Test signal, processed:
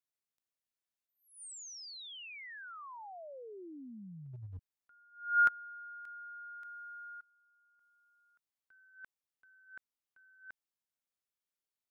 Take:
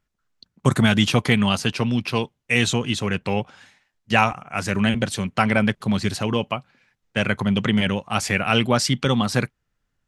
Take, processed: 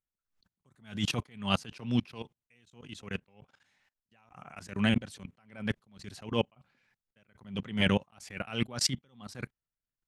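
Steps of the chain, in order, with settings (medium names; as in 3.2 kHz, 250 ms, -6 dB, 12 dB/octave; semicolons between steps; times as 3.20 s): level held to a coarse grid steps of 24 dB; attacks held to a fixed rise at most 140 dB/s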